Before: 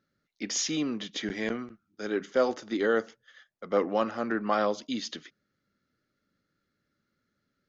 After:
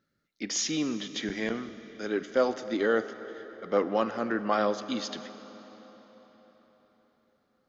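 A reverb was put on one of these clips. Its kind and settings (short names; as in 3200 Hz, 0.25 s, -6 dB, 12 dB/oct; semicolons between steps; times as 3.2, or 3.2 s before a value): digital reverb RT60 4.7 s, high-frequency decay 0.8×, pre-delay 15 ms, DRR 12 dB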